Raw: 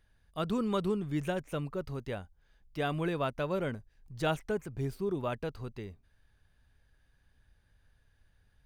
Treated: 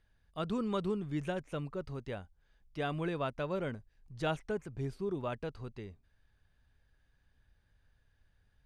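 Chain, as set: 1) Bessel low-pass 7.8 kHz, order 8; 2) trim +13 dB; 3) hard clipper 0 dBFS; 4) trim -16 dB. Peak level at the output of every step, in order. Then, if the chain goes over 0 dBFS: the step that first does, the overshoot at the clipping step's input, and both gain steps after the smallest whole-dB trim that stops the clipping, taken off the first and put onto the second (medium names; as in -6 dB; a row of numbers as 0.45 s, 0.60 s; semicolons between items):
-18.0 dBFS, -5.0 dBFS, -5.0 dBFS, -21.0 dBFS; nothing clips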